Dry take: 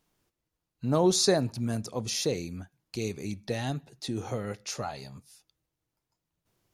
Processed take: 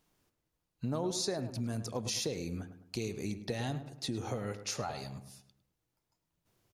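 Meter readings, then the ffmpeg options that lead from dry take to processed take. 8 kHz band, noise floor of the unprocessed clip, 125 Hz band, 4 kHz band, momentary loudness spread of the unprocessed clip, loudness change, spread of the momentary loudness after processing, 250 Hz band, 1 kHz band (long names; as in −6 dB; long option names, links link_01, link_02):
−6.5 dB, below −85 dBFS, −5.0 dB, −6.0 dB, 16 LU, −7.0 dB, 9 LU, −6.5 dB, −6.5 dB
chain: -filter_complex "[0:a]acompressor=threshold=-32dB:ratio=6,asplit=2[link_01][link_02];[link_02]adelay=105,lowpass=frequency=1900:poles=1,volume=-10.5dB,asplit=2[link_03][link_04];[link_04]adelay=105,lowpass=frequency=1900:poles=1,volume=0.44,asplit=2[link_05][link_06];[link_06]adelay=105,lowpass=frequency=1900:poles=1,volume=0.44,asplit=2[link_07][link_08];[link_08]adelay=105,lowpass=frequency=1900:poles=1,volume=0.44,asplit=2[link_09][link_10];[link_10]adelay=105,lowpass=frequency=1900:poles=1,volume=0.44[link_11];[link_01][link_03][link_05][link_07][link_09][link_11]amix=inputs=6:normalize=0"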